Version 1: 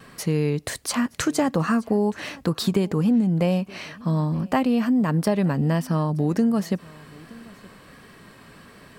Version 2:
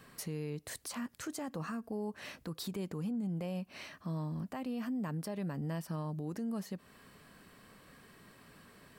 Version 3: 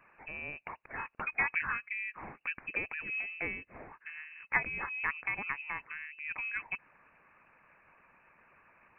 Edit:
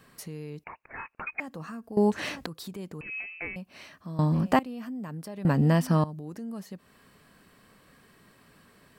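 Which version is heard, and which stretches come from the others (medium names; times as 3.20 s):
2
0.64–1.40 s: from 3
1.97–2.46 s: from 1
3.01–3.56 s: from 3
4.19–4.59 s: from 1
5.45–6.04 s: from 1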